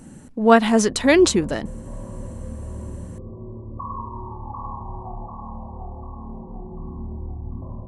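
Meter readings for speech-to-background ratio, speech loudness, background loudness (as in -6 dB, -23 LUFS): 18.0 dB, -17.5 LUFS, -35.5 LUFS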